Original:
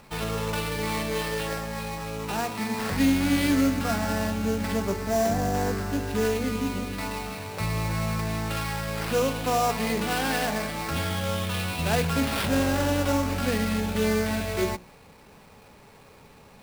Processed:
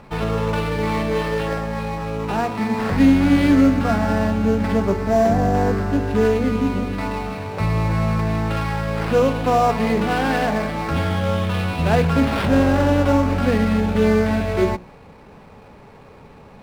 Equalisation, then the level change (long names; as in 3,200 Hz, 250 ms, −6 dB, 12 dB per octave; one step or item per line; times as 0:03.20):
low-pass filter 1,400 Hz 6 dB per octave
+8.5 dB